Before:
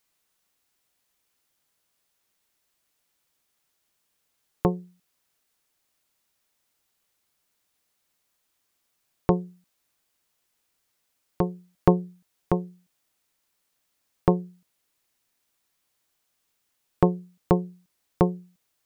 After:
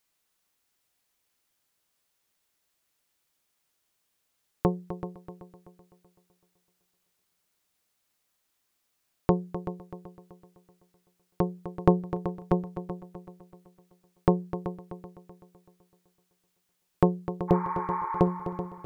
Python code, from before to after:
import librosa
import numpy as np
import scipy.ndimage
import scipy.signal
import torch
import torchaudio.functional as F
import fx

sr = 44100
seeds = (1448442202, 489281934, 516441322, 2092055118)

y = fx.spec_repair(x, sr, seeds[0], start_s=17.51, length_s=0.68, low_hz=790.0, high_hz=2400.0, source='after')
y = fx.echo_heads(y, sr, ms=127, heads='second and third', feedback_pct=42, wet_db=-12)
y = y * librosa.db_to_amplitude(-2.0)